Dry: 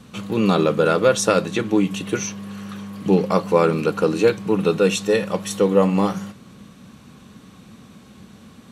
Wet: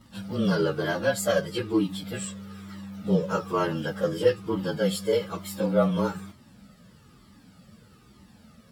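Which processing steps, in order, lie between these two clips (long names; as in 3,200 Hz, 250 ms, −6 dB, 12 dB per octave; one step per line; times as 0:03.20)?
partials spread apart or drawn together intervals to 108%
flanger whose copies keep moving one way falling 1.1 Hz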